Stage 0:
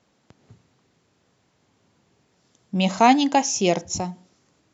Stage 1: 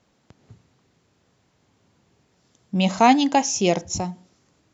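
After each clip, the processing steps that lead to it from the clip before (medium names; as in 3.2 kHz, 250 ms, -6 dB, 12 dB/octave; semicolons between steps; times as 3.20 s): bass shelf 75 Hz +8.5 dB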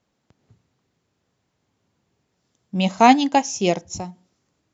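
upward expansion 1.5:1, over -33 dBFS; trim +3 dB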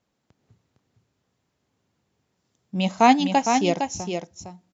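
delay 459 ms -6 dB; trim -3 dB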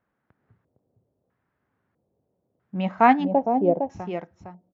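LFO low-pass square 0.77 Hz 570–1600 Hz; trim -2.5 dB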